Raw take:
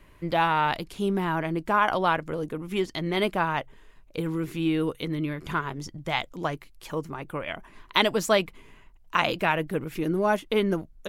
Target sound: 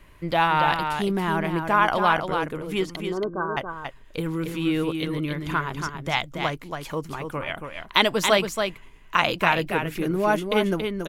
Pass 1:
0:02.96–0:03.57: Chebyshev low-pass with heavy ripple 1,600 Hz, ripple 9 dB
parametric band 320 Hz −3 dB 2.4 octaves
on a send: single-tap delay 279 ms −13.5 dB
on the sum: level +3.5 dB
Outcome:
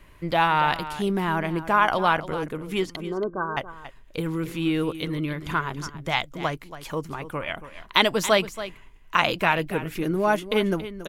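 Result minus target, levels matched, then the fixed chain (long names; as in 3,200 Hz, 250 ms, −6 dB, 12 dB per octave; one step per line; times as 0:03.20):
echo-to-direct −7.5 dB
0:02.96–0:03.57: Chebyshev low-pass with heavy ripple 1,600 Hz, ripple 9 dB
parametric band 320 Hz −3 dB 2.4 octaves
on a send: single-tap delay 279 ms −6 dB
on the sum: level +3.5 dB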